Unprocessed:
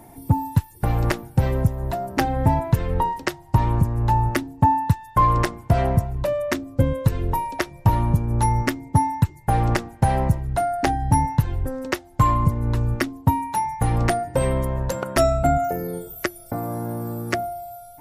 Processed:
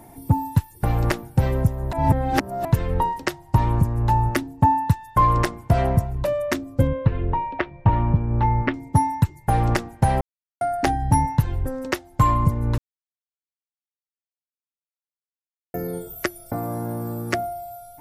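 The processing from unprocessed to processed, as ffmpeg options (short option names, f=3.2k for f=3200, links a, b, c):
-filter_complex "[0:a]asettb=1/sr,asplit=3[a][b][c];[a]atrim=end=6.874[d];[b]atrim=start=6.87:end=8.74,asetpts=PTS-STARTPTS,afade=t=in:d=0.004:c=qsin,afade=t=out:st=1.866:d=0.004:c=qsin,lowpass=f=3k:w=0.5412,lowpass=f=3k:w=1.3066[e];[c]atrim=start=8.736[f];[d][e]acrossfade=d=0.004:c1=hsin:c2=qsin[g];[g][f]acrossfade=d=0.004:c1=qsin:c2=hsin,asplit=7[h][i][j][k][l][m][n];[h]atrim=end=1.932[o];[i]atrim=start=1.928:end=2.652,asetpts=PTS-STARTPTS,areverse[p];[j]atrim=start=2.648:end=10.21,asetpts=PTS-STARTPTS,afade=t=out:st=7.558:d=0.004:c=hsin[q];[k]atrim=start=10.21:end=10.61,asetpts=PTS-STARTPTS,volume=0[r];[l]atrim=start=10.61:end=12.78,asetpts=PTS-STARTPTS,afade=t=in:d=0.004:c=hsin,afade=t=out:st=2.166:d=0.004:c=hsin[s];[m]atrim=start=12.78:end=15.74,asetpts=PTS-STARTPTS,volume=0[t];[n]atrim=start=15.74,asetpts=PTS-STARTPTS,afade=t=in:d=0.004:c=hsin[u];[o][p]acrossfade=d=0.004:c1=hsin:c2=hsin[v];[q][r][s][t][u]concat=n=5:v=0:a=1[w];[v][w]acrossfade=d=0.004:c1=hsin:c2=hsin"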